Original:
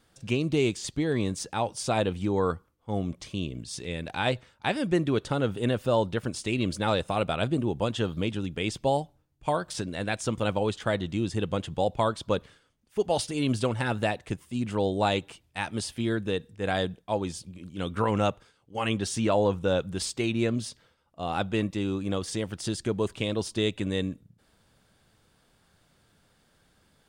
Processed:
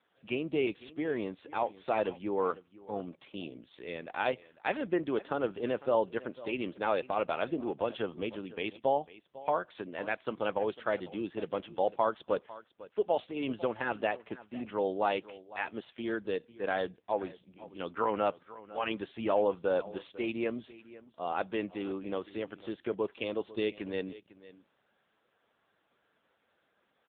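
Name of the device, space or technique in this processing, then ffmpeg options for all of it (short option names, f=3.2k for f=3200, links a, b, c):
satellite phone: -af "highpass=350,lowpass=3.1k,aecho=1:1:500:0.126,volume=-1.5dB" -ar 8000 -c:a libopencore_amrnb -b:a 6700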